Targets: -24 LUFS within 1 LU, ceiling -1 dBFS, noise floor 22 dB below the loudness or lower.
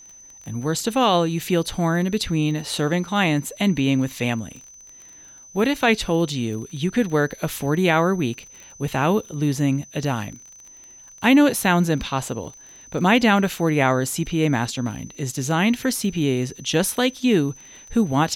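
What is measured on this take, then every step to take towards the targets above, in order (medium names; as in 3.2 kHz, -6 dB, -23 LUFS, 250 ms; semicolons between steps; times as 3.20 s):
tick rate 26 per s; steady tone 6.1 kHz; tone level -43 dBFS; loudness -21.5 LUFS; peak level -6.0 dBFS; loudness target -24.0 LUFS
-> de-click; band-stop 6.1 kHz, Q 30; trim -2.5 dB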